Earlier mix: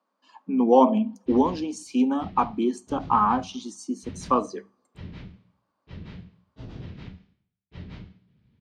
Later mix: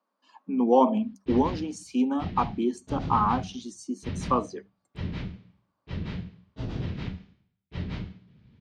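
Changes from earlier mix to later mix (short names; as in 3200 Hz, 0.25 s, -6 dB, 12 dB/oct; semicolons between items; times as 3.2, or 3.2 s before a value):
background +7.0 dB; reverb: off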